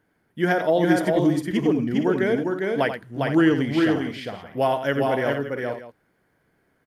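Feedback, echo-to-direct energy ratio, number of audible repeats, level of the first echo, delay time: repeats not evenly spaced, −1.5 dB, 4, −9.5 dB, 86 ms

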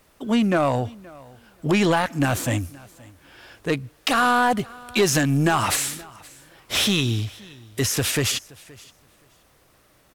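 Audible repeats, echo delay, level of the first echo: 1, 523 ms, −23.0 dB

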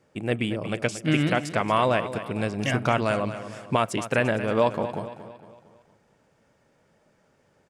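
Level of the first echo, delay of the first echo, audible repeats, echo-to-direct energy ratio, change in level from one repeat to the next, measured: −12.0 dB, 229 ms, 4, −11.0 dB, −6.5 dB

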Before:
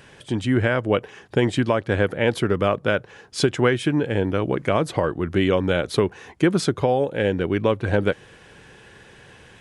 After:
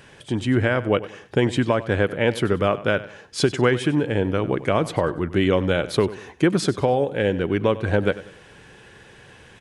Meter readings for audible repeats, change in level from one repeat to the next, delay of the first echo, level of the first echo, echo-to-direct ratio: 3, −8.5 dB, 96 ms, −16.5 dB, −16.0 dB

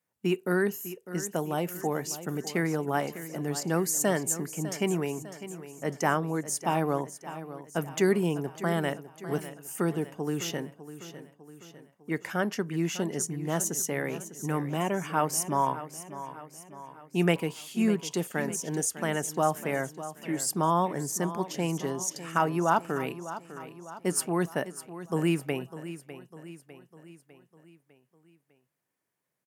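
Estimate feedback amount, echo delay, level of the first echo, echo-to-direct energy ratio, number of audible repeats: 52%, 602 ms, −13.5 dB, −12.0 dB, 4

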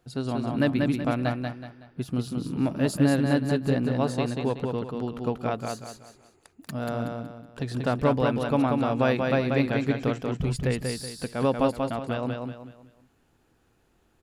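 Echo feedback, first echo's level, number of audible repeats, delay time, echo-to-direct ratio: 35%, −4.0 dB, 4, 187 ms, −3.5 dB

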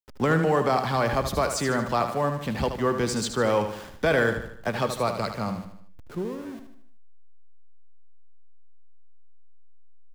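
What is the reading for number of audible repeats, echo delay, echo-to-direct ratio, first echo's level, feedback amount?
5, 76 ms, −7.5 dB, −8.5 dB, 47%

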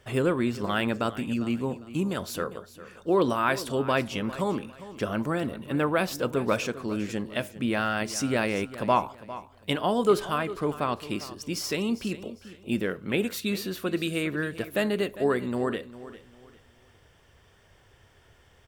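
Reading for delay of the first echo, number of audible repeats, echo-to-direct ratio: 402 ms, 2, −15.0 dB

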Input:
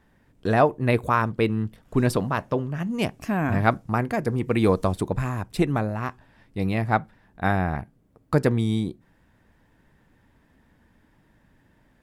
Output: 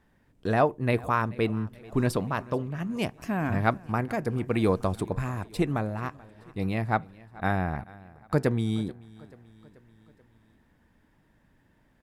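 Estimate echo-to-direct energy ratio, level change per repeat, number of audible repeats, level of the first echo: −20.5 dB, −5.0 dB, 3, −22.0 dB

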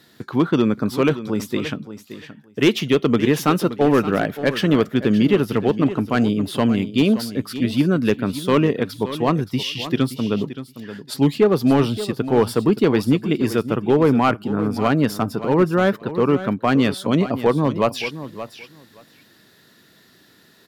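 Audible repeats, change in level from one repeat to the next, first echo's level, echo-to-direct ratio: 2, −16.5 dB, −13.0 dB, −13.0 dB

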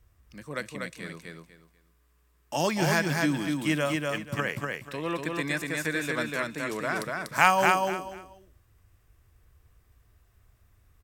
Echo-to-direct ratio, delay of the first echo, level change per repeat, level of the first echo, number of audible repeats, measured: −2.5 dB, 243 ms, −12.5 dB, −3.0 dB, 3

